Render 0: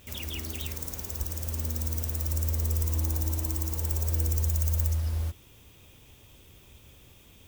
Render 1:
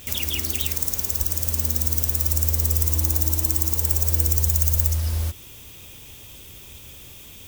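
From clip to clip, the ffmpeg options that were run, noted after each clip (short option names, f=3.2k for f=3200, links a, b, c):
-filter_complex "[0:a]highshelf=f=2.7k:g=8.5,asplit=2[a][b];[b]acompressor=threshold=-32dB:ratio=6,volume=-1.5dB[c];[a][c]amix=inputs=2:normalize=0,volume=2dB"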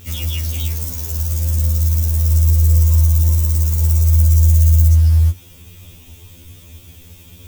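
-af "lowshelf=f=310:g=10.5,afftfilt=real='re*2*eq(mod(b,4),0)':imag='im*2*eq(mod(b,4),0)':win_size=2048:overlap=0.75"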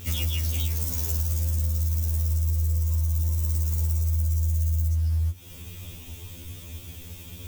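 -af "acompressor=threshold=-23dB:ratio=6"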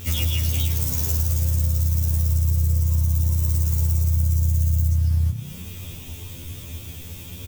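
-filter_complex "[0:a]asplit=6[a][b][c][d][e][f];[b]adelay=106,afreqshift=32,volume=-11.5dB[g];[c]adelay=212,afreqshift=64,volume=-18.2dB[h];[d]adelay=318,afreqshift=96,volume=-25dB[i];[e]adelay=424,afreqshift=128,volume=-31.7dB[j];[f]adelay=530,afreqshift=160,volume=-38.5dB[k];[a][g][h][i][j][k]amix=inputs=6:normalize=0,volume=4dB"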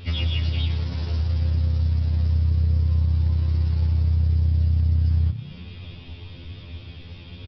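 -af "aeval=exprs='0.376*(cos(1*acos(clip(val(0)/0.376,-1,1)))-cos(1*PI/2))+0.0106*(cos(7*acos(clip(val(0)/0.376,-1,1)))-cos(7*PI/2))':c=same,aresample=11025,aresample=44100"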